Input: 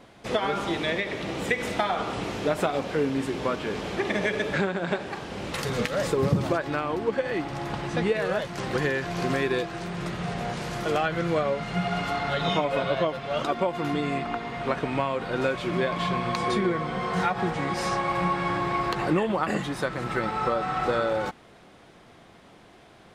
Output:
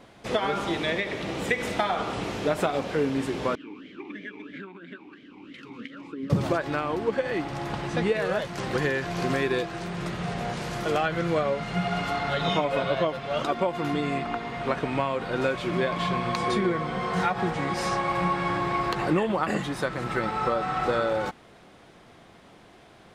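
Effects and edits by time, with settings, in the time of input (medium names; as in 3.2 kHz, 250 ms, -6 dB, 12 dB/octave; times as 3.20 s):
3.55–6.30 s: talking filter i-u 3 Hz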